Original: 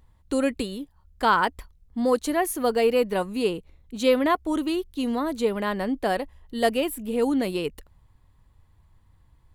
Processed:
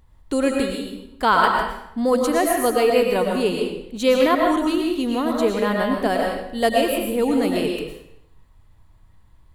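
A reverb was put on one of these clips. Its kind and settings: algorithmic reverb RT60 0.75 s, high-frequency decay 0.95×, pre-delay 75 ms, DRR 0.5 dB; trim +2.5 dB

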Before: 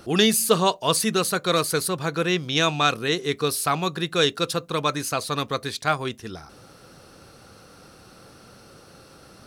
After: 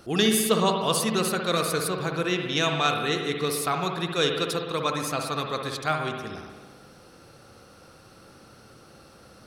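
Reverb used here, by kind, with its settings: spring tank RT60 1.5 s, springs 59 ms, chirp 50 ms, DRR 3 dB; trim -4 dB

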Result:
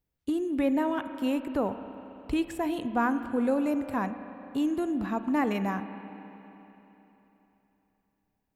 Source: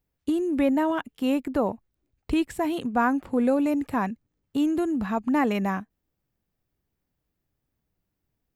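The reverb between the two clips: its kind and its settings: spring tank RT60 3.5 s, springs 30/43 ms, chirp 50 ms, DRR 9.5 dB; trim -4 dB

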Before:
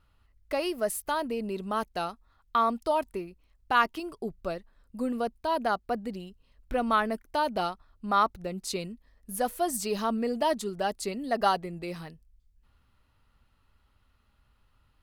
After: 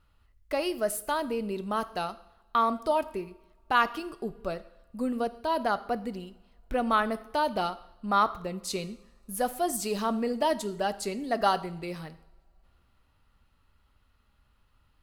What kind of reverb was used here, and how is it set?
two-slope reverb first 0.7 s, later 3 s, from -25 dB, DRR 13 dB

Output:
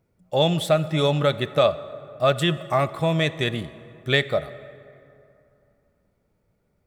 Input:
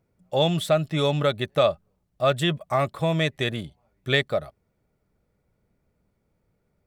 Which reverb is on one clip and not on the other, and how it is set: plate-style reverb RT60 2.8 s, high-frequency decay 0.5×, DRR 14 dB; trim +1.5 dB

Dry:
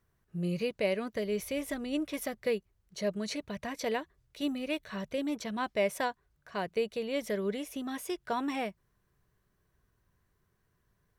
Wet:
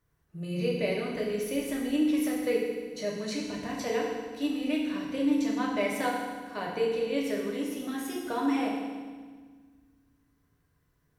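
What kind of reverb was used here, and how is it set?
FDN reverb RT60 1.5 s, low-frequency decay 1.5×, high-frequency decay 0.95×, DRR -3.5 dB; trim -3 dB

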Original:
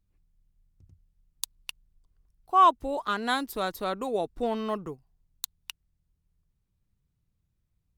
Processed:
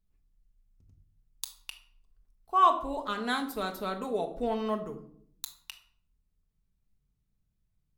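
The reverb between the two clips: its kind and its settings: simulated room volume 960 m³, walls furnished, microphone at 1.5 m; trim -4.5 dB

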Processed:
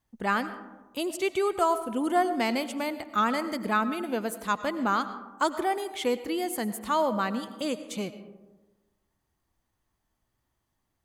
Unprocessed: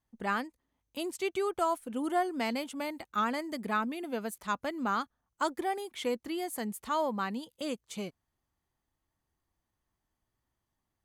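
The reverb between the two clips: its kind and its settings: algorithmic reverb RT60 1.2 s, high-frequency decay 0.35×, pre-delay 60 ms, DRR 12 dB; trim +5 dB

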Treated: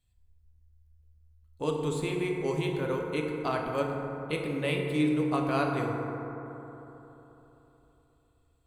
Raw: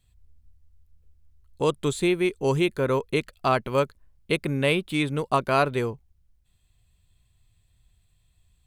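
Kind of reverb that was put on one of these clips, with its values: FDN reverb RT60 3.6 s, high-frequency decay 0.3×, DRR -0.5 dB; trim -9.5 dB

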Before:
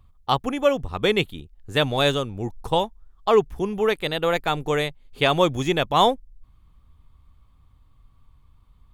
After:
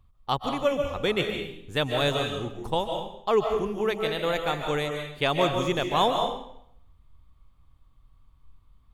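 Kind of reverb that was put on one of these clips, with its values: algorithmic reverb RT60 0.7 s, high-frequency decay 0.95×, pre-delay 105 ms, DRR 3 dB; trim -5.5 dB

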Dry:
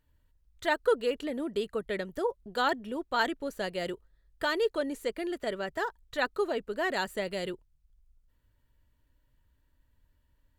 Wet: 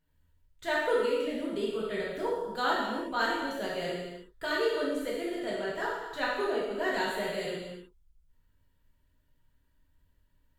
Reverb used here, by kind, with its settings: gated-style reverb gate 390 ms falling, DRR -6.5 dB; trim -7 dB

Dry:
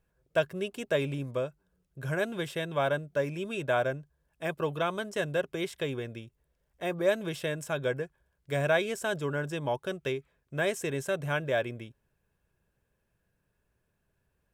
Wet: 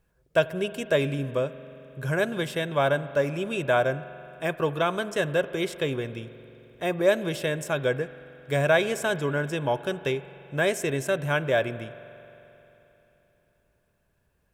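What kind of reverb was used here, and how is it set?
spring tank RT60 3.4 s, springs 44 ms, chirp 75 ms, DRR 14.5 dB; trim +5 dB

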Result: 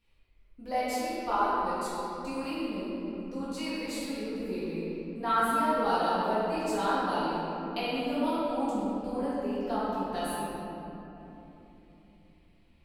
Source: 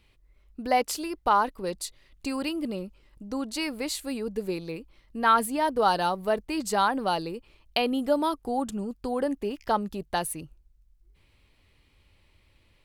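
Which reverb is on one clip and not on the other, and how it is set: simulated room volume 190 m³, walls hard, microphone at 1.8 m; trim -15.5 dB

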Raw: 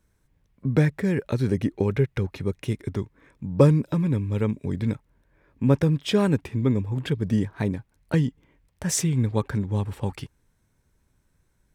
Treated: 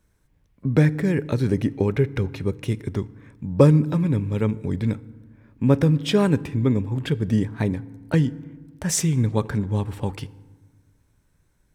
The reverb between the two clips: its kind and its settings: FDN reverb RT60 1.3 s, low-frequency decay 1.5×, high-frequency decay 0.55×, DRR 17.5 dB; trim +2 dB

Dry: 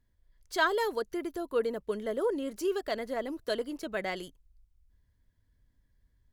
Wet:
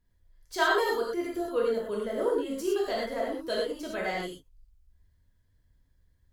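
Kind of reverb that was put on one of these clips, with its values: gated-style reverb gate 140 ms flat, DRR -4 dB; trim -3 dB

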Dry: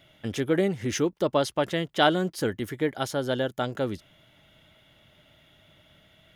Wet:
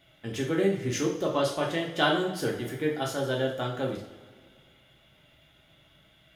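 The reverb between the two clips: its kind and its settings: two-slope reverb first 0.49 s, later 2 s, from -16 dB, DRR -2.5 dB; trim -5.5 dB

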